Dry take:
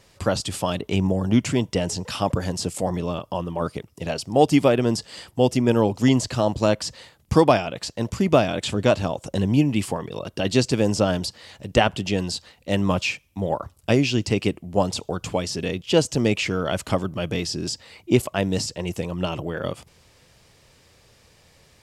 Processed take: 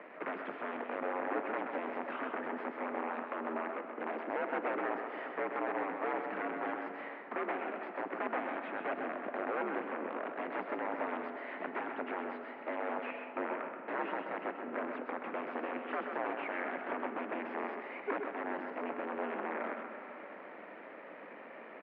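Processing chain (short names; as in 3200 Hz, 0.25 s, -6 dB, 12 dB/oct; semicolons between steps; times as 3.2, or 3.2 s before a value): G.711 law mismatch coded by mu; dynamic EQ 810 Hz, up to -6 dB, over -32 dBFS, Q 0.95; compressor 3:1, threshold -37 dBFS, peak gain reduction 18 dB; wrapped overs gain 29.5 dB; added harmonics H 6 -14 dB, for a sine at -29.5 dBFS; echo 0.129 s -6 dB; on a send at -7.5 dB: reverb RT60 3.3 s, pre-delay 76 ms; on the sum: mistuned SSB +66 Hz 200–2100 Hz; gain +1.5 dB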